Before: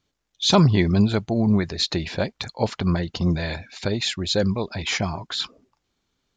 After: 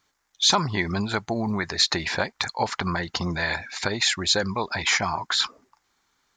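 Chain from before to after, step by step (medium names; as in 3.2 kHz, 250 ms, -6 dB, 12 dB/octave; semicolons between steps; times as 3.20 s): high-order bell 1.3 kHz +10 dB; compression 3:1, threshold -21 dBFS, peak gain reduction 10.5 dB; tone controls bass -5 dB, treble +9 dB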